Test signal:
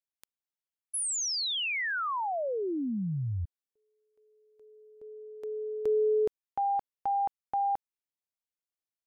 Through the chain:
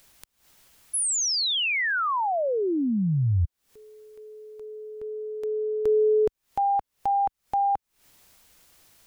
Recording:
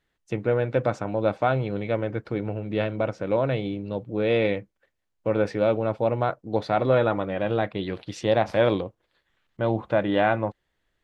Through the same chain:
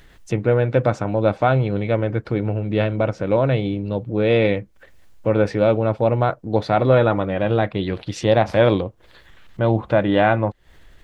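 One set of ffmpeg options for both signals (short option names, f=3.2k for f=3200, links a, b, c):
-filter_complex "[0:a]lowshelf=f=94:g=10.5,asplit=2[a][b];[b]acompressor=mode=upward:threshold=-23dB:ratio=2.5:attack=0.48:release=159:knee=2.83:detection=peak,volume=-3dB[c];[a][c]amix=inputs=2:normalize=0"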